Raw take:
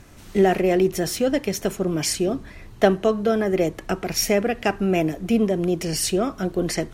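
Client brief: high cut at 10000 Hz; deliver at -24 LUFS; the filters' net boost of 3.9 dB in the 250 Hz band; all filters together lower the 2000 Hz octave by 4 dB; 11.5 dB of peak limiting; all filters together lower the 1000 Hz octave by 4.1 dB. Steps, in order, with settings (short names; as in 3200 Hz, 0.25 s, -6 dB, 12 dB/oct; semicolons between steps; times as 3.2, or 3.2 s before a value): LPF 10000 Hz; bell 250 Hz +6 dB; bell 1000 Hz -7 dB; bell 2000 Hz -3 dB; limiter -14 dBFS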